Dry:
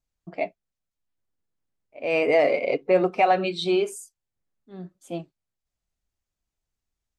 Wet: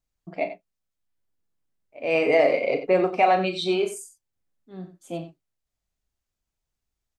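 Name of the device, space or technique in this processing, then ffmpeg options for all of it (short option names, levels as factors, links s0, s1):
slapback doubling: -filter_complex "[0:a]asplit=3[s0][s1][s2];[s1]adelay=37,volume=0.355[s3];[s2]adelay=91,volume=0.251[s4];[s0][s3][s4]amix=inputs=3:normalize=0"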